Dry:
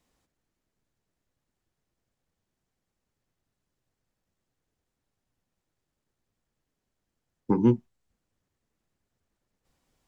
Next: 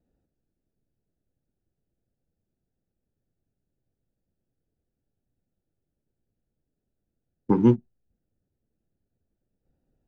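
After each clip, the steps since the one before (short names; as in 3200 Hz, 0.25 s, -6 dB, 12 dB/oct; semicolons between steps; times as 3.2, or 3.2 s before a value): Wiener smoothing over 41 samples; gain +3 dB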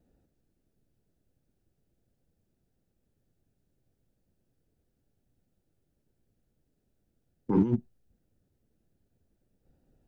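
negative-ratio compressor -25 dBFS, ratio -1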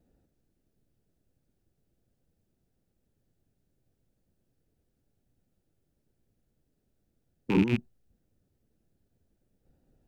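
rattling part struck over -31 dBFS, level -23 dBFS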